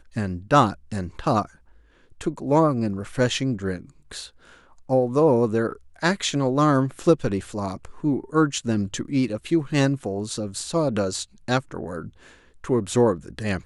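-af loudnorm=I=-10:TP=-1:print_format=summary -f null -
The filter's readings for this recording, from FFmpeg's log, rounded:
Input Integrated:    -23.8 LUFS
Input True Peak:      -3.3 dBTP
Input LRA:             2.8 LU
Input Threshold:     -34.5 LUFS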